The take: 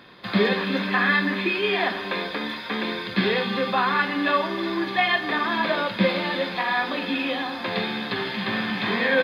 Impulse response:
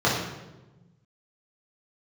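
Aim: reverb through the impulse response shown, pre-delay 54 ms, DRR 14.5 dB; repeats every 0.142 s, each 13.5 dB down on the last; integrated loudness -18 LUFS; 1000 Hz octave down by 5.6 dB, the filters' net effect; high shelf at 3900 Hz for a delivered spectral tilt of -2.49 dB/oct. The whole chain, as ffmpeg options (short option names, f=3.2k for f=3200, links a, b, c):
-filter_complex "[0:a]equalizer=f=1k:t=o:g=-7.5,highshelf=f=3.9k:g=3,aecho=1:1:142|284:0.211|0.0444,asplit=2[a][b];[1:a]atrim=start_sample=2205,adelay=54[c];[b][c]afir=irnorm=-1:irlink=0,volume=-32dB[d];[a][d]amix=inputs=2:normalize=0,volume=6.5dB"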